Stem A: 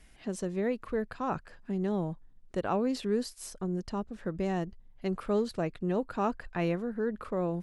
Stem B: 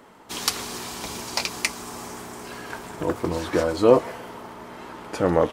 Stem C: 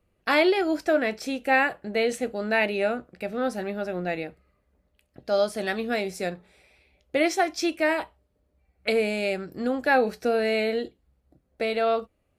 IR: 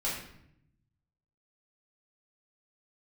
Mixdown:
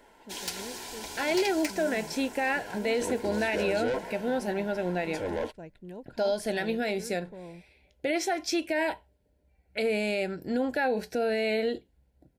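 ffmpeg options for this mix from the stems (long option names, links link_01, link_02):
-filter_complex "[0:a]volume=-13dB[link_01];[1:a]equalizer=frequency=150:width=1.1:gain=-12,asoftclip=type=tanh:threshold=-20.5dB,volume=-5.5dB[link_02];[2:a]alimiter=limit=-19.5dB:level=0:latency=1:release=98,adelay=900,volume=0.5dB[link_03];[link_01][link_02][link_03]amix=inputs=3:normalize=0,asuperstop=centerf=1200:order=12:qfactor=4.5"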